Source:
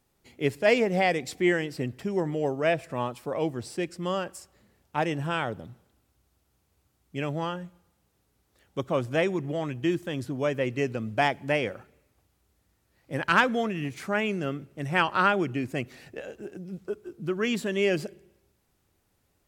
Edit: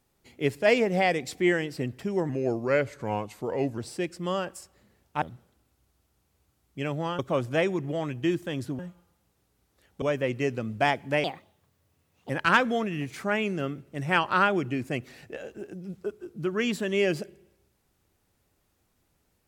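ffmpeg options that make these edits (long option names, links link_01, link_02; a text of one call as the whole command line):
ffmpeg -i in.wav -filter_complex "[0:a]asplit=9[link_01][link_02][link_03][link_04][link_05][link_06][link_07][link_08][link_09];[link_01]atrim=end=2.294[link_10];[link_02]atrim=start=2.29:end=3.57,asetpts=PTS-STARTPTS,asetrate=37926,aresample=44100,atrim=end_sample=65637,asetpts=PTS-STARTPTS[link_11];[link_03]atrim=start=3.566:end=5.012[link_12];[link_04]atrim=start=5.588:end=7.562[link_13];[link_05]atrim=start=8.788:end=10.392[link_14];[link_06]atrim=start=7.558:end=8.792[link_15];[link_07]atrim=start=10.388:end=11.614[link_16];[link_08]atrim=start=11.61:end=13.13,asetpts=PTS-STARTPTS,asetrate=63504,aresample=44100[link_17];[link_09]atrim=start=13.126[link_18];[link_10][link_11]acrossfade=duration=0.004:curve1=hsin:curve2=hsin[link_19];[link_19][link_12]acrossfade=duration=0.004:curve1=hsin:curve2=hsin[link_20];[link_20][link_13]acrossfade=duration=0.004:curve1=hsin:curve2=hsin[link_21];[link_21][link_14]acrossfade=duration=0.004:curve1=hsin:curve2=hsin[link_22];[link_22][link_15]acrossfade=duration=0.004:curve1=hsin:curve2=hsin[link_23];[link_23][link_16]acrossfade=duration=0.004:curve1=hsin:curve2=hsin[link_24];[link_24][link_17]acrossfade=duration=0.004:curve1=hsin:curve2=hsin[link_25];[link_25][link_18]acrossfade=duration=0.004:curve1=hsin:curve2=hsin" out.wav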